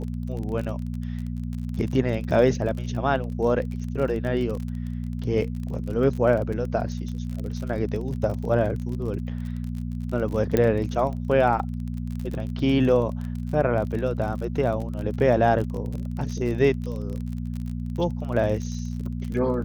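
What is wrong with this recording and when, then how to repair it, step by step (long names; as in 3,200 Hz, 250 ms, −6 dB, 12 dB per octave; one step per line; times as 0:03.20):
surface crackle 37 per second −31 dBFS
mains hum 60 Hz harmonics 4 −30 dBFS
0:10.57: click −9 dBFS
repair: click removal
hum removal 60 Hz, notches 4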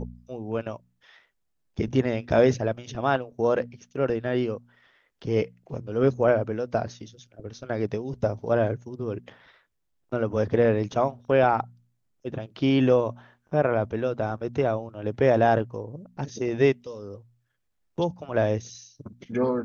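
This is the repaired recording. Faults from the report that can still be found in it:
none of them is left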